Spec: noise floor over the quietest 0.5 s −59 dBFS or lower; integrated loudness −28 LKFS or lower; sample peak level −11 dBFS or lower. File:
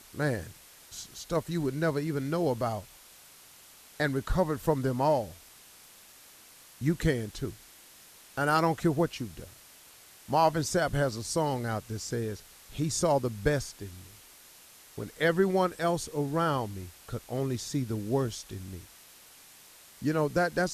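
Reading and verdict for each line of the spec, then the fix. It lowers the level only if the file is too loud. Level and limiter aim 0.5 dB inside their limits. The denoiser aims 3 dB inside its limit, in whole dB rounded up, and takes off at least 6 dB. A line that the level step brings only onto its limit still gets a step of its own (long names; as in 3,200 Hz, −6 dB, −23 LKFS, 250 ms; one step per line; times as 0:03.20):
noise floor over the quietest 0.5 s −54 dBFS: out of spec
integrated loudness −30.0 LKFS: in spec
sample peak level −11.5 dBFS: in spec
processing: broadband denoise 8 dB, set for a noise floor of −54 dBFS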